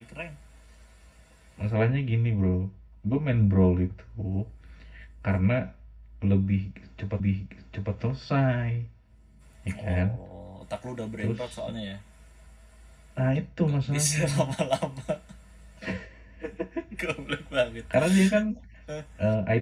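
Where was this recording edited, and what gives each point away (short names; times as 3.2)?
7.2 repeat of the last 0.75 s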